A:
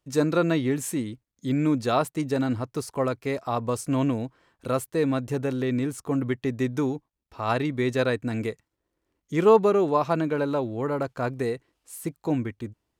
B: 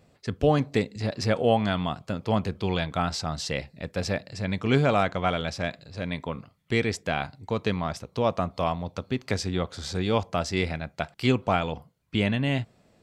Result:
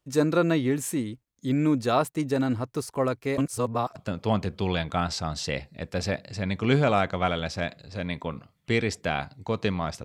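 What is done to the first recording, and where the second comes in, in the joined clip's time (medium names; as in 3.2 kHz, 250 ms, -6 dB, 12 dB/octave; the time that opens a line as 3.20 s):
A
3.38–3.96 s: reverse
3.96 s: go over to B from 1.98 s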